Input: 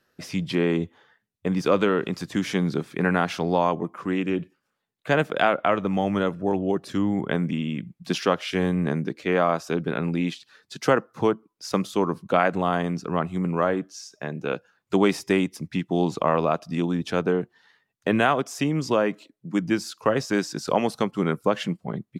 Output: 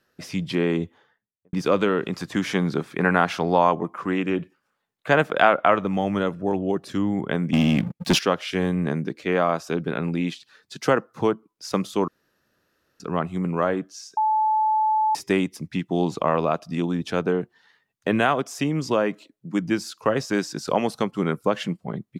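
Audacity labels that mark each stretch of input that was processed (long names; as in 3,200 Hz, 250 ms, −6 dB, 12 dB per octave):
0.840000	1.530000	fade out and dull
2.130000	5.840000	parametric band 1,100 Hz +5 dB 2.1 octaves
7.530000	8.190000	leveller curve on the samples passes 3
12.080000	13.000000	fill with room tone
14.170000	15.150000	beep over 867 Hz −17.5 dBFS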